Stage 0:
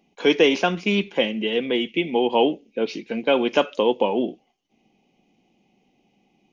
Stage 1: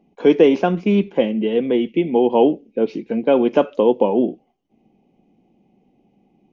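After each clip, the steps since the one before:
tilt shelving filter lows +9.5 dB, about 1,400 Hz
level −2.5 dB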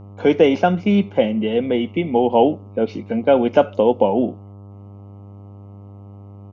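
comb filter 1.4 ms, depth 43%
hum with harmonics 100 Hz, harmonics 13, −40 dBFS −8 dB per octave
level +1 dB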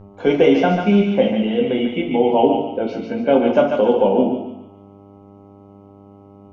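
feedback echo with a high-pass in the loop 144 ms, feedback 43%, high-pass 730 Hz, level −4 dB
convolution reverb RT60 0.55 s, pre-delay 5 ms, DRR 1.5 dB
level −2.5 dB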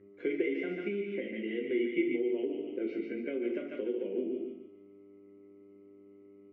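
downward compressor, threshold −19 dBFS, peak gain reduction 10.5 dB
pair of resonant band-passes 850 Hz, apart 2.5 octaves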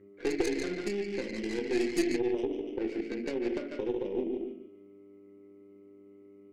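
stylus tracing distortion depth 0.37 ms
level +1.5 dB

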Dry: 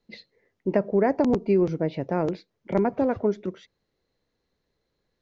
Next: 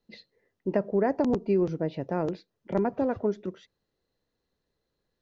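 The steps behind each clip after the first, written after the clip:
notch filter 2,200 Hz, Q 9.1
level −3.5 dB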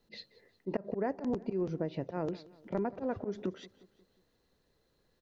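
volume swells 129 ms
downward compressor 4 to 1, threshold −39 dBFS, peak gain reduction 15 dB
repeating echo 179 ms, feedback 50%, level −20.5 dB
level +6.5 dB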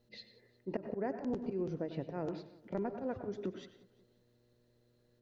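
hum with harmonics 120 Hz, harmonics 5, −70 dBFS −3 dB per octave
parametric band 1,100 Hz −3 dB 0.56 octaves
on a send at −9 dB: convolution reverb RT60 0.45 s, pre-delay 88 ms
on the sum: level −3.5 dB

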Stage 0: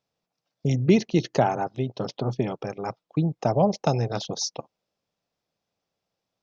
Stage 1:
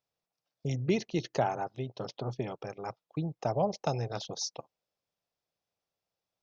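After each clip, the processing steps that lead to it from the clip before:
parametric band 220 Hz −5.5 dB 1.3 octaves
level −6.5 dB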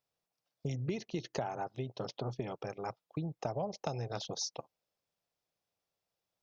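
downward compressor 5 to 1, threshold −33 dBFS, peak gain reduction 10.5 dB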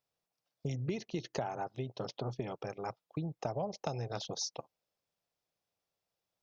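no processing that can be heard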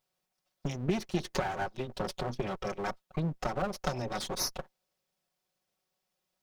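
lower of the sound and its delayed copy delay 5.4 ms
level +6.5 dB

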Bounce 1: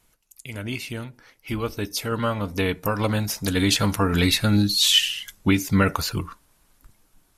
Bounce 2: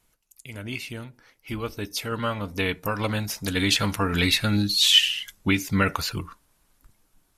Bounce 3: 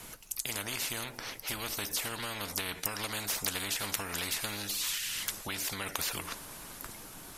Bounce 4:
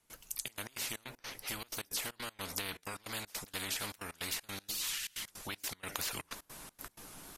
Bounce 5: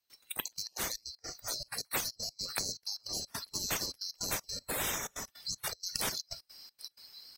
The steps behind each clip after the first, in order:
dynamic equaliser 2,500 Hz, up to +6 dB, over −35 dBFS, Q 0.76; level −4 dB
downward compressor 6 to 1, threshold −31 dBFS, peak gain reduction 18 dB; every bin compressed towards the loudest bin 4 to 1; level +8.5 dB
mains-hum notches 60/120 Hz; gate pattern ".xxxx.x.xx.x" 157 BPM −24 dB; tape wow and flutter 75 cents; level −3.5 dB
neighbouring bands swapped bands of 4,000 Hz; noise reduction from a noise print of the clip's start 14 dB; notch filter 7,200 Hz, Q 6.7; level +5 dB

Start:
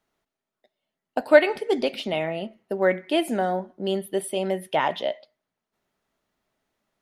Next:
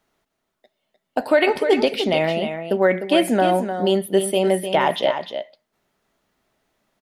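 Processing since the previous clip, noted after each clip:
brickwall limiter −14 dBFS, peak gain reduction 11 dB
on a send: single-tap delay 303 ms −8.5 dB
on the sum: level +7 dB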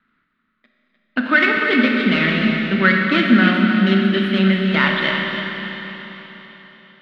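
running median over 15 samples
drawn EQ curve 130 Hz 0 dB, 230 Hz +12 dB, 370 Hz −5 dB, 800 Hz −14 dB, 1,300 Hz +14 dB, 2,000 Hz +13 dB, 3,800 Hz +11 dB, 6,000 Hz −15 dB, 13,000 Hz −22 dB
convolution reverb RT60 4.1 s, pre-delay 28 ms, DRR 1 dB
level −1 dB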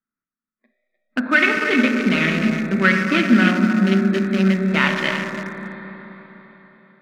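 adaptive Wiener filter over 15 samples
noise reduction from a noise print of the clip's start 22 dB
parametric band 2,500 Hz +7.5 dB 0.23 octaves
level −1 dB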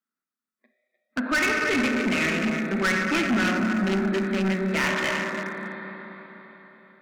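high-pass filter 240 Hz 12 dB per octave
soft clipping −19 dBFS, distortion −8 dB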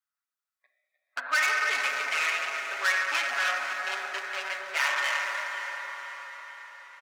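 high-pass filter 720 Hz 24 dB per octave
comb filter 7.1 ms
on a send: feedback delay with all-pass diffusion 500 ms, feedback 51%, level −10.5 dB
on the sum: level −2.5 dB

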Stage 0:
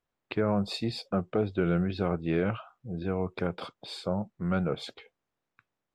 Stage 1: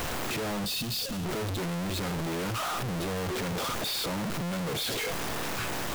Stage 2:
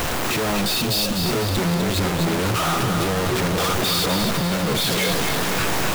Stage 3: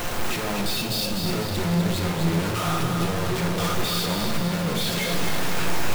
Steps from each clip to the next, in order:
sign of each sample alone; gain on a spectral selection 0:00.66–0:01.25, 320–2,500 Hz −7 dB
echo with a time of its own for lows and highs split 820 Hz, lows 471 ms, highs 250 ms, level −5 dB; level +9 dB
rectangular room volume 500 cubic metres, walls mixed, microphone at 0.89 metres; level −6.5 dB

